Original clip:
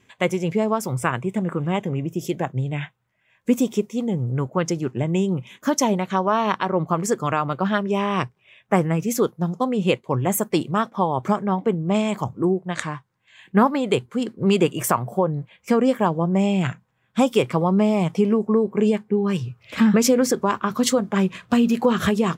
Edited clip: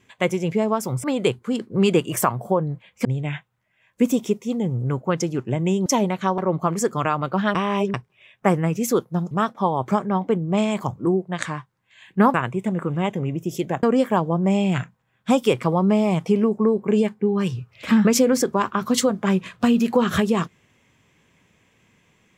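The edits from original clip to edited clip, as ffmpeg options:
-filter_complex "[0:a]asplit=10[s0][s1][s2][s3][s4][s5][s6][s7][s8][s9];[s0]atrim=end=1.042[s10];[s1]atrim=start=13.708:end=15.722[s11];[s2]atrim=start=2.528:end=5.342[s12];[s3]atrim=start=5.748:end=6.272[s13];[s4]atrim=start=6.648:end=7.822[s14];[s5]atrim=start=7.818:end=8.212,asetpts=PTS-STARTPTS,areverse[s15];[s6]atrim=start=8.208:end=9.582[s16];[s7]atrim=start=10.678:end=13.712[s17];[s8]atrim=start=1.038:end=2.532[s18];[s9]atrim=start=15.718[s19];[s10][s11]acrossfade=d=0.004:c1=hsin:c2=hsin[s20];[s20][s12]acrossfade=d=0.004:c1=hsin:c2=hsin[s21];[s21][s13]acrossfade=d=0.004:c1=hsin:c2=hsin[s22];[s22][s14]acrossfade=d=0.004:c1=hsin:c2=hsin[s23];[s23][s15]acrossfade=d=0.004:c1=hsin:c2=hsin[s24];[s24][s16]acrossfade=d=0.004:c1=hsin:c2=hsin[s25];[s25][s17]acrossfade=d=0.004:c1=hsin:c2=hsin[s26];[s26][s18]acrossfade=d=0.004:c1=hsin:c2=hsin[s27];[s27][s19]acrossfade=d=0.004:c1=hsin:c2=hsin"

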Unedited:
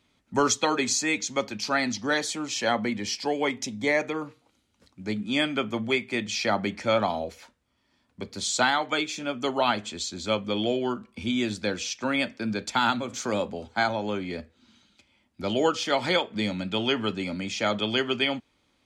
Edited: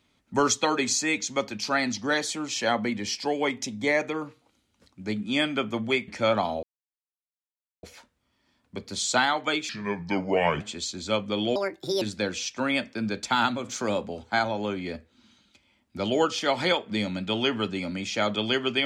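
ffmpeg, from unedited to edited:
-filter_complex "[0:a]asplit=7[s0][s1][s2][s3][s4][s5][s6];[s0]atrim=end=6.082[s7];[s1]atrim=start=6.728:end=7.28,asetpts=PTS-STARTPTS,afade=t=out:st=0.548:d=0.004:c=hsin,apad=pad_dur=1.2[s8];[s2]atrim=start=7.28:end=9.144,asetpts=PTS-STARTPTS,afade=t=in:d=0.004:c=hsin[s9];[s3]atrim=start=9.14:end=9.79,asetpts=PTS-STARTPTS,asetrate=31311,aresample=44100,atrim=end_sample=40373,asetpts=PTS-STARTPTS[s10];[s4]atrim=start=9.786:end=10.744[s11];[s5]atrim=start=10.74:end=11.46,asetpts=PTS-STARTPTS,asetrate=68796,aresample=44100[s12];[s6]atrim=start=11.456[s13];[s8][s9]concat=n=2:v=0:a=1[s14];[s7][s14]acrossfade=d=0.004:c1=hsin:c2=hsin[s15];[s15][s10]acrossfade=d=0.004:c1=hsin:c2=hsin[s16];[s16][s11]acrossfade=d=0.004:c1=hsin:c2=hsin[s17];[s17][s12]acrossfade=d=0.004:c1=hsin:c2=hsin[s18];[s18][s13]acrossfade=d=0.004:c1=hsin:c2=hsin"

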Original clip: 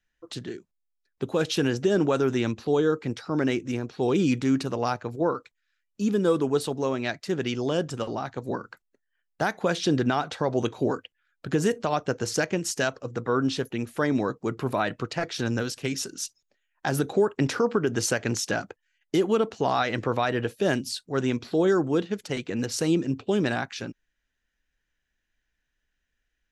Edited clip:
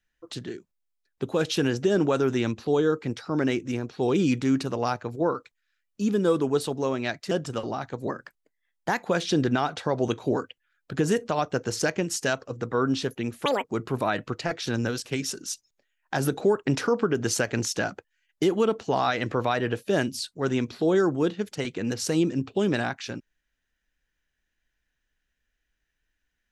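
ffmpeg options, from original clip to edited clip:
-filter_complex "[0:a]asplit=6[s0][s1][s2][s3][s4][s5];[s0]atrim=end=7.312[s6];[s1]atrim=start=7.748:end=8.524[s7];[s2]atrim=start=8.52:end=9.58,asetpts=PTS-STARTPTS,asetrate=48951,aresample=44100[s8];[s3]atrim=start=9.576:end=14.004[s9];[s4]atrim=start=14:end=14.36,asetpts=PTS-STARTPTS,asetrate=85995,aresample=44100[s10];[s5]atrim=start=14.356[s11];[s6][s7]acrossfade=d=0.004:c1=hsin:c2=hsin[s12];[s12][s8]acrossfade=d=0.004:c1=hsin:c2=hsin[s13];[s13][s9]acrossfade=d=0.004:c1=hsin:c2=hsin[s14];[s14][s10]acrossfade=d=0.004:c1=hsin:c2=hsin[s15];[s15][s11]acrossfade=d=0.004:c1=hsin:c2=hsin"

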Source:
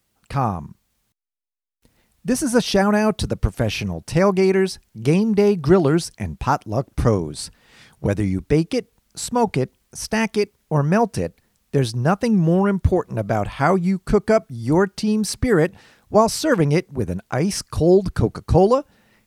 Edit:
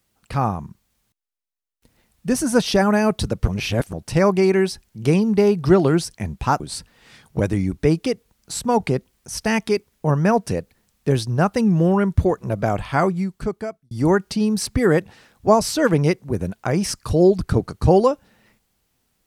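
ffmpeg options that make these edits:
-filter_complex "[0:a]asplit=5[s0][s1][s2][s3][s4];[s0]atrim=end=3.482[s5];[s1]atrim=start=3.478:end=3.932,asetpts=PTS-STARTPTS,areverse[s6];[s2]atrim=start=3.928:end=6.602[s7];[s3]atrim=start=7.268:end=14.58,asetpts=PTS-STARTPTS,afade=t=out:st=6.262:d=1.05[s8];[s4]atrim=start=14.58,asetpts=PTS-STARTPTS,afade=t=in:d=0.004:c=hsin[s9];[s5][s6]acrossfade=d=0.004:c1=hsin:c2=hsin[s10];[s10][s7]acrossfade=d=0.004:c1=hsin:c2=hsin[s11];[s8][s9]concat=n=2:v=0:a=1[s12];[s11][s12]acrossfade=d=0.004:c1=hsin:c2=hsin"

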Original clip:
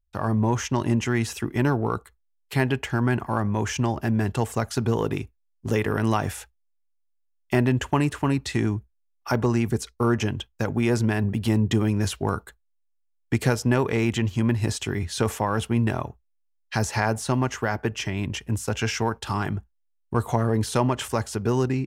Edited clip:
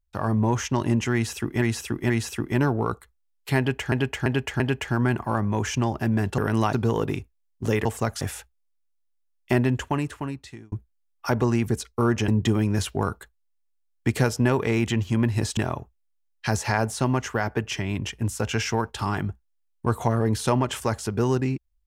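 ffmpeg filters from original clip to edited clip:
-filter_complex "[0:a]asplit=13[s0][s1][s2][s3][s4][s5][s6][s7][s8][s9][s10][s11][s12];[s0]atrim=end=1.622[s13];[s1]atrim=start=1.138:end=1.622[s14];[s2]atrim=start=1.138:end=2.962[s15];[s3]atrim=start=2.618:end=2.962[s16];[s4]atrim=start=2.618:end=2.962[s17];[s5]atrim=start=2.618:end=4.402[s18];[s6]atrim=start=5.878:end=6.232[s19];[s7]atrim=start=4.758:end=5.882[s20];[s8]atrim=start=4.398:end=4.762[s21];[s9]atrim=start=6.228:end=8.74,asetpts=PTS-STARTPTS,afade=t=out:st=1.332:d=1.18[s22];[s10]atrim=start=8.74:end=10.302,asetpts=PTS-STARTPTS,afade=t=in:d=0.004:c=hsin[s23];[s11]atrim=start=11.538:end=14.832[s24];[s12]atrim=start=15.848[s25];[s13][s14]acrossfade=d=0.004:c1=hsin:c2=hsin[s26];[s26][s15]acrossfade=d=0.004:c1=hsin:c2=hsin[s27];[s27][s16]acrossfade=d=0.004:c1=hsin:c2=hsin[s28];[s28][s17]acrossfade=d=0.004:c1=hsin:c2=hsin[s29];[s29][s18]acrossfade=d=0.004:c1=hsin:c2=hsin[s30];[s30][s19]acrossfade=d=0.004:c1=hsin:c2=hsin[s31];[s31][s20]acrossfade=d=0.004:c1=hsin:c2=hsin[s32];[s32][s21]acrossfade=d=0.004:c1=hsin:c2=hsin[s33];[s22][s23]concat=n=2:v=0:a=1[s34];[s33][s34]acrossfade=d=0.004:c1=hsin:c2=hsin[s35];[s35][s24]acrossfade=d=0.004:c1=hsin:c2=hsin[s36];[s36][s25]acrossfade=d=0.004:c1=hsin:c2=hsin"

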